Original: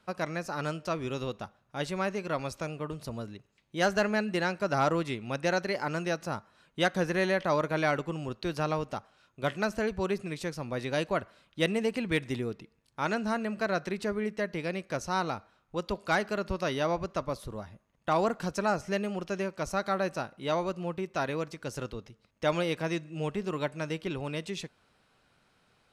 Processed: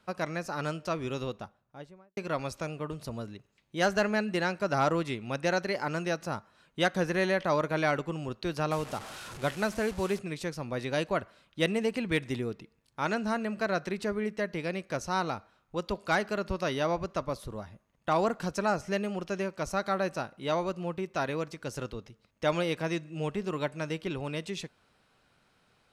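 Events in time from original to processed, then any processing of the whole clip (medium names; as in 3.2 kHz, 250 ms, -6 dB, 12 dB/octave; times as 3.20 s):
1.16–2.17 s: studio fade out
8.71–10.19 s: one-bit delta coder 64 kbps, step -37.5 dBFS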